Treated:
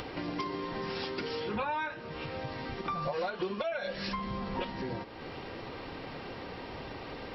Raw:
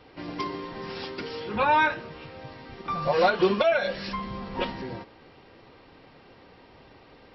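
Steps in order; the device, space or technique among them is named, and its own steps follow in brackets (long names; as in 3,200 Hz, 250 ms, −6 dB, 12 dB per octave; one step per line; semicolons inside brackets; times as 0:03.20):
upward and downward compression (upward compression, threshold −31 dBFS; downward compressor 8 to 1, threshold −31 dBFS, peak gain reduction 15 dB)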